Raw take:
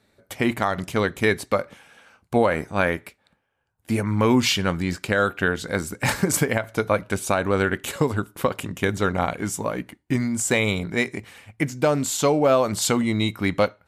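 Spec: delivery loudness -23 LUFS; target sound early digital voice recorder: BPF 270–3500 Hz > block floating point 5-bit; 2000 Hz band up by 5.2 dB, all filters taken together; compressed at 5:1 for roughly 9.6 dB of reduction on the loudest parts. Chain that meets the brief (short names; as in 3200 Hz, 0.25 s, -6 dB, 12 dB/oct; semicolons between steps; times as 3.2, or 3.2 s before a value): bell 2000 Hz +7 dB; compressor 5:1, threshold -24 dBFS; BPF 270–3500 Hz; block floating point 5-bit; gain +7.5 dB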